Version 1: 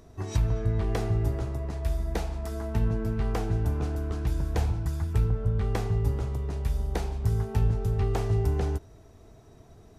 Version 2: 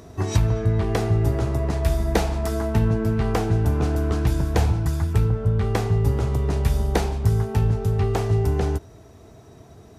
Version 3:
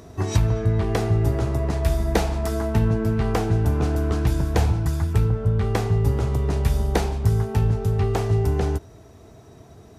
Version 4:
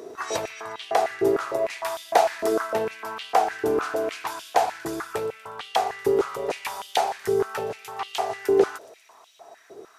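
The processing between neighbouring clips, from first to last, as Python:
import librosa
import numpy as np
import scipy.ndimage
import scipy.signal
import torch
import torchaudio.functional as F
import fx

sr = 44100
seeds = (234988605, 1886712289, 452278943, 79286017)

y1 = scipy.signal.sosfilt(scipy.signal.butter(2, 70.0, 'highpass', fs=sr, output='sos'), x)
y1 = fx.rider(y1, sr, range_db=3, speed_s=0.5)
y1 = F.gain(torch.from_numpy(y1), 8.5).numpy()
y2 = y1
y3 = fx.echo_wet_highpass(y2, sr, ms=120, feedback_pct=65, hz=3500.0, wet_db=-16.0)
y3 = fx.filter_held_highpass(y3, sr, hz=6.6, low_hz=400.0, high_hz=3100.0)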